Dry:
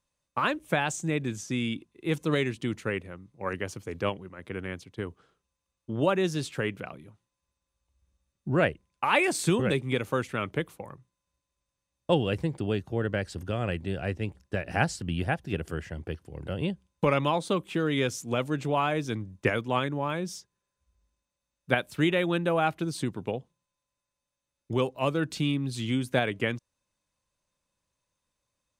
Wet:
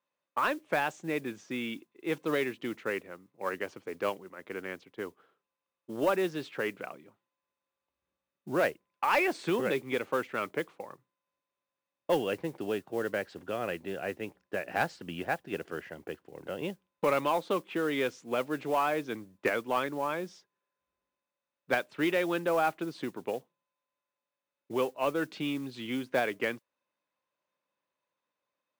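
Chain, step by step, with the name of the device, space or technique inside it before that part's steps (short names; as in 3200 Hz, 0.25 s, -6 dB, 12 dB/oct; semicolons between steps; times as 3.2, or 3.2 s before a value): carbon microphone (BPF 320–2700 Hz; soft clip -16.5 dBFS, distortion -20 dB; modulation noise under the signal 23 dB)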